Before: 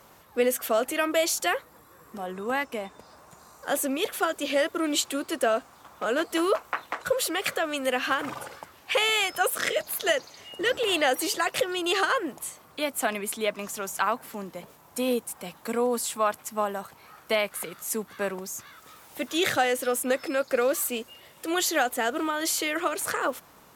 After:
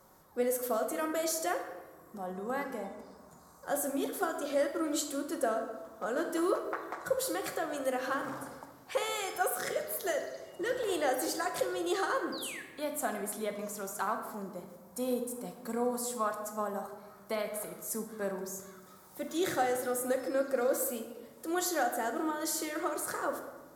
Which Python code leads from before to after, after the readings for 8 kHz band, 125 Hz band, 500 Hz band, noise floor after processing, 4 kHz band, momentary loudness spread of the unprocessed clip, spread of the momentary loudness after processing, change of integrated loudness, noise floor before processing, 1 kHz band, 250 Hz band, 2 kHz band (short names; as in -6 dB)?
-6.5 dB, -3.5 dB, -5.5 dB, -56 dBFS, -13.5 dB, 13 LU, 12 LU, -7.0 dB, -54 dBFS, -6.0 dB, -4.5 dB, -10.5 dB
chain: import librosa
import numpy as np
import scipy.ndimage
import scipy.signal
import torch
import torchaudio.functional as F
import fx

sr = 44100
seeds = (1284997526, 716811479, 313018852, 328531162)

y = fx.peak_eq(x, sr, hz=2700.0, db=-14.5, octaves=0.86)
y = fx.spec_paint(y, sr, seeds[0], shape='fall', start_s=12.32, length_s=0.3, low_hz=1600.0, high_hz=5000.0, level_db=-38.0)
y = fx.room_shoebox(y, sr, seeds[1], volume_m3=850.0, walls='mixed', distance_m=0.99)
y = F.gain(torch.from_numpy(y), -6.5).numpy()